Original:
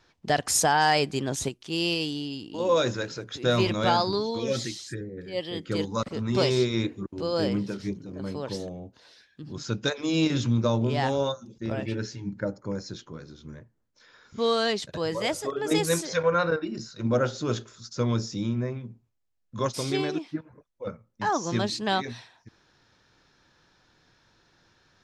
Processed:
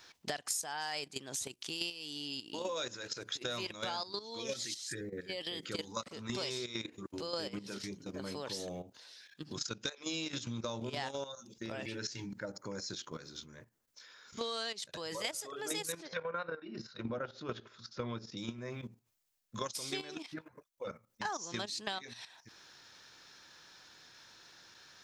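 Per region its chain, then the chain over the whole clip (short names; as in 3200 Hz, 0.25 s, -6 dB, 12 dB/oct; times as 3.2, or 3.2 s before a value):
15.92–18.37 upward compressor, threshold -43 dBFS + air absorption 320 m
whole clip: level quantiser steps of 13 dB; tilt +3 dB/oct; compressor 6:1, threshold -41 dBFS; gain +4.5 dB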